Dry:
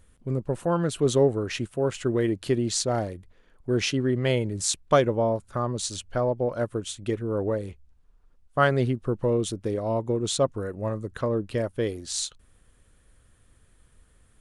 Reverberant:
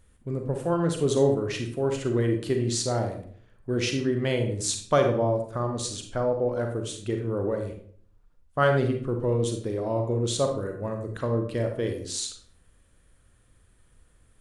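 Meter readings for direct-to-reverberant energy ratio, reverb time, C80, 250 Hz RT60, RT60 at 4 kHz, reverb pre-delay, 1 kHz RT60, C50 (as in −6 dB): 4.0 dB, 0.55 s, 10.5 dB, 0.70 s, 0.40 s, 35 ms, 0.50 s, 6.0 dB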